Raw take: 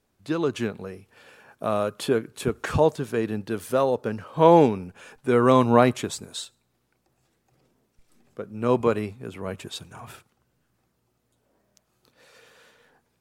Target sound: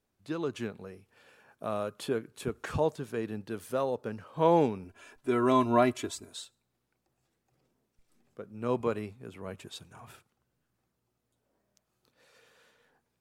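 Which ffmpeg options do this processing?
ffmpeg -i in.wav -filter_complex "[0:a]asettb=1/sr,asplit=3[link_01][link_02][link_03];[link_01]atrim=end=4.844[link_04];[link_02]atrim=start=4.84:end=6.3,asetpts=PTS-STARTPTS,afade=type=in:duration=0.004:curve=qsin,afade=type=out:start_time=1.456:duration=0.004:curve=qsin,aecho=1:1:3:0.76,atrim=end_sample=64386[link_05];[link_03]atrim=start=6.296[link_06];[link_04][link_05]acrossfade=duration=0.004:curve1=hsin:curve2=qsin[link_07];[link_07][link_06]acrossfade=duration=0.004:curve1=qsin:curve2=hsin,volume=-8.5dB" out.wav

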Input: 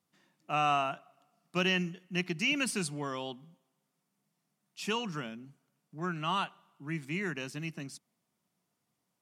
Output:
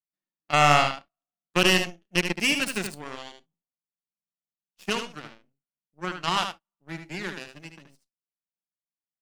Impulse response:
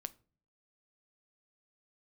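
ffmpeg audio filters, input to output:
-filter_complex "[0:a]acontrast=27,aeval=exprs='0.282*(cos(1*acos(clip(val(0)/0.282,-1,1)))-cos(1*PI/2))+0.0794*(cos(2*acos(clip(val(0)/0.282,-1,1)))-cos(2*PI/2))+0.0178*(cos(6*acos(clip(val(0)/0.282,-1,1)))-cos(6*PI/2))+0.0398*(cos(7*acos(clip(val(0)/0.282,-1,1)))-cos(7*PI/2))+0.0178*(cos(8*acos(clip(val(0)/0.282,-1,1)))-cos(8*PI/2))':channel_layout=same,asplit=2[link_01][link_02];[1:a]atrim=start_sample=2205,atrim=end_sample=3087,adelay=75[link_03];[link_02][link_03]afir=irnorm=-1:irlink=0,volume=-4dB[link_04];[link_01][link_04]amix=inputs=2:normalize=0,volume=3.5dB"

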